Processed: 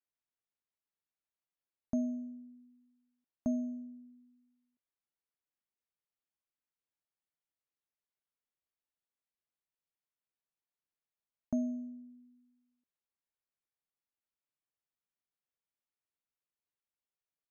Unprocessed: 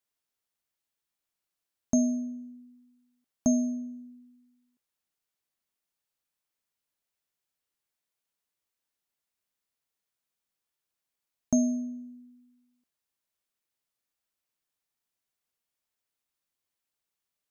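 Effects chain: air absorption 270 m; gain -8 dB

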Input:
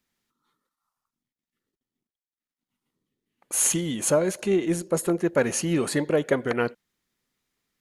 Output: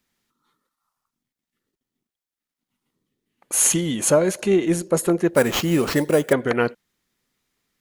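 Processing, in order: 5.34–6.33 sample-rate reducer 9700 Hz, jitter 0%; gain +4.5 dB

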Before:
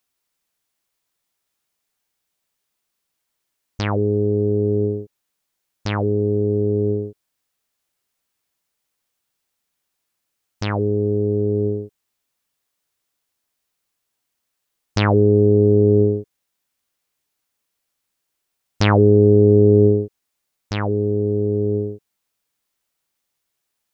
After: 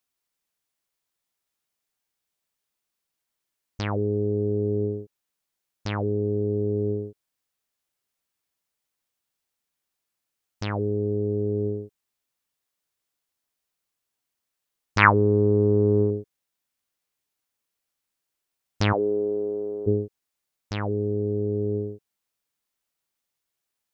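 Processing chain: 14.98–16.11 band shelf 1500 Hz +15 dB; 18.92–19.86 HPF 380 Hz -> 830 Hz 12 dB/oct; gain -6 dB

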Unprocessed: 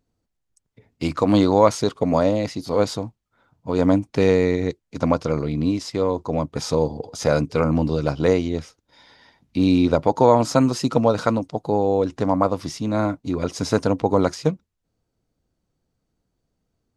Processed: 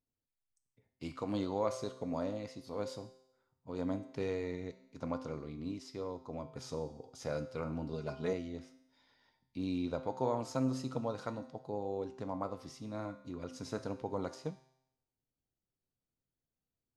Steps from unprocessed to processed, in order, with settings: resonator 130 Hz, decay 0.81 s, harmonics all, mix 70%; flange 0.33 Hz, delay 7.7 ms, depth 6.6 ms, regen -87%; 7.93–8.33 comb 4.8 ms, depth 78%; gain -5.5 dB

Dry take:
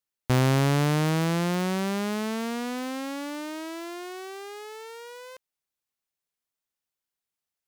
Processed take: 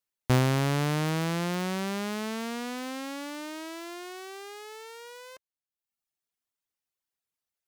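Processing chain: reverb removal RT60 0.89 s

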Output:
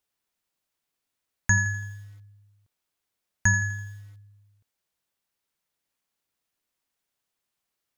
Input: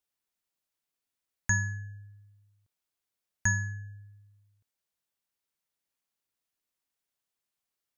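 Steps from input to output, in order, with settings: high shelf 4300 Hz -3 dB; lo-fi delay 83 ms, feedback 55%, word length 9-bit, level -14 dB; gain +6 dB

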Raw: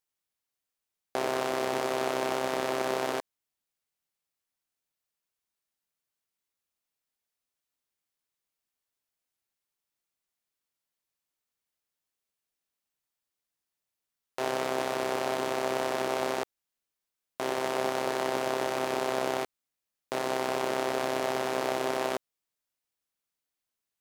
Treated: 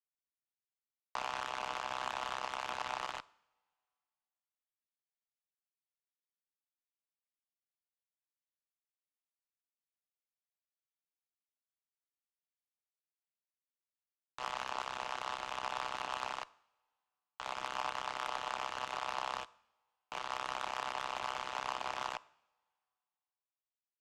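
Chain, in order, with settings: mistuned SSB +360 Hz 160–3200 Hz; added harmonics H 3 -18 dB, 7 -18 dB, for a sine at -16.5 dBFS; two-slope reverb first 0.71 s, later 2.4 s, from -21 dB, DRR 19.5 dB; gain -5.5 dB

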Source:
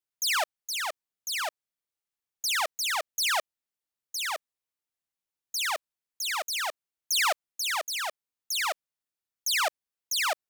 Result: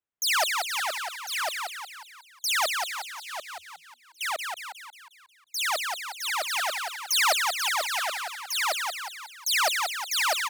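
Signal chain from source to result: Wiener smoothing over 9 samples; 2.72–4.21 gate -24 dBFS, range -21 dB; frequency-shifting echo 0.18 s, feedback 53%, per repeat +79 Hz, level -4 dB; gain +2.5 dB

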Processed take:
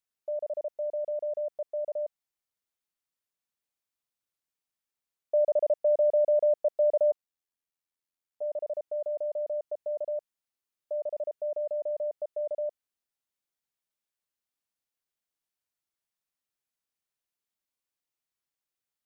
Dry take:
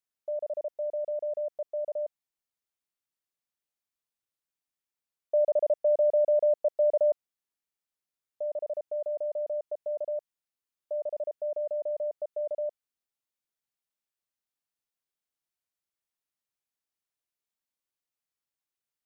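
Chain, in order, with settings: 7.11–8.42 AM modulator 85 Hz, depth 50%

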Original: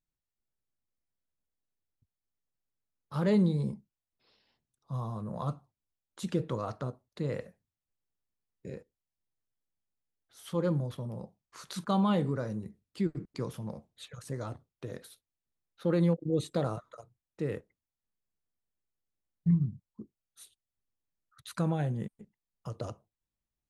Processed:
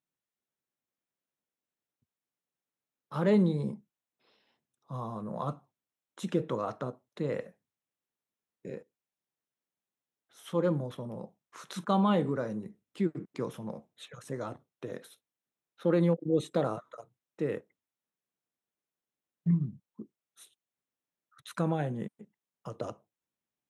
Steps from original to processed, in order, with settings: HPF 190 Hz 12 dB/oct; high shelf 4500 Hz -6.5 dB; notch 4600 Hz, Q 5.4; gain +3 dB

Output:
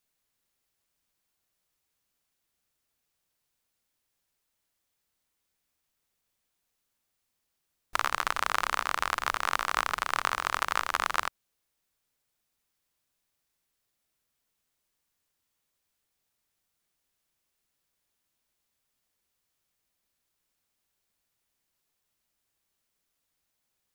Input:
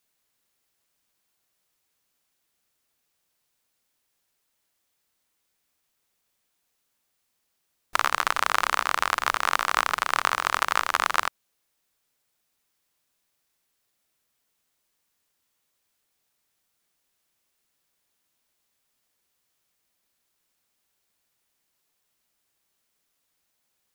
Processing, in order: low shelf 120 Hz +7.5 dB; gain -5 dB

